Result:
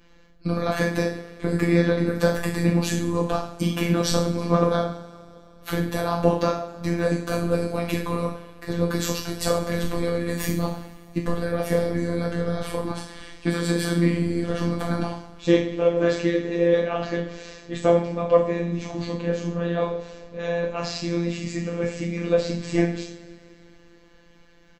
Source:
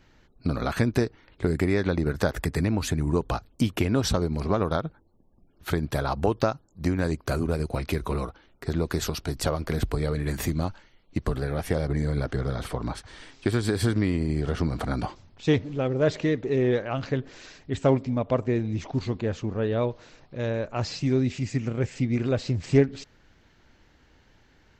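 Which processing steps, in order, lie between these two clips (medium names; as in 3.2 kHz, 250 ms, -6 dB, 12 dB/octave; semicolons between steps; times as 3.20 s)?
comb 4.1 ms, depth 58%; two-slope reverb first 0.52 s, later 3 s, from -21 dB, DRR -2.5 dB; robot voice 171 Hz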